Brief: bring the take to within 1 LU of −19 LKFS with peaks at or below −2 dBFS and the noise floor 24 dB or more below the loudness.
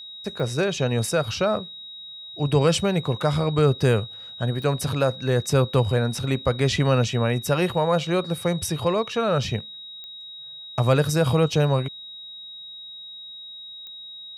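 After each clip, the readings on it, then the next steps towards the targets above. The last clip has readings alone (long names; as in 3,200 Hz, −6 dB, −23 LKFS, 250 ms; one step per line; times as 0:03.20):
number of clicks 4; interfering tone 3,800 Hz; level of the tone −37 dBFS; integrated loudness −23.0 LKFS; sample peak −7.5 dBFS; target loudness −19.0 LKFS
→ click removal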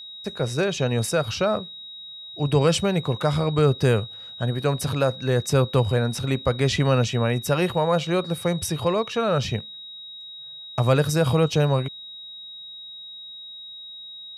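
number of clicks 0; interfering tone 3,800 Hz; level of the tone −37 dBFS
→ notch filter 3,800 Hz, Q 30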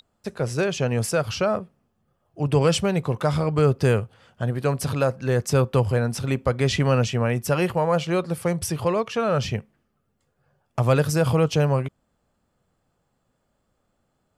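interfering tone none found; integrated loudness −23.0 LKFS; sample peak −7.5 dBFS; target loudness −19.0 LKFS
→ level +4 dB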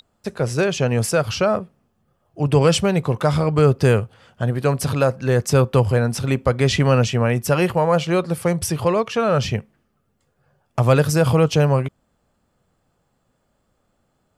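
integrated loudness −19.0 LKFS; sample peak −3.5 dBFS; background noise floor −69 dBFS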